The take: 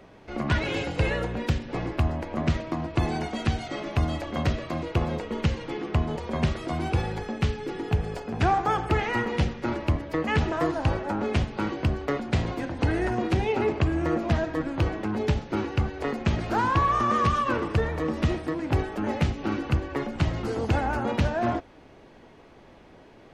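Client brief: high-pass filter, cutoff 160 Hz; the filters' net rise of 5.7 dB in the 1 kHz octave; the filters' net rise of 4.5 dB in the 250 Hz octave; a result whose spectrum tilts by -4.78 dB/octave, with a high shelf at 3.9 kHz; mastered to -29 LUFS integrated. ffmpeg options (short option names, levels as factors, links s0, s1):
-af "highpass=160,equalizer=f=250:t=o:g=6.5,equalizer=f=1000:t=o:g=6.5,highshelf=f=3900:g=4.5,volume=0.596"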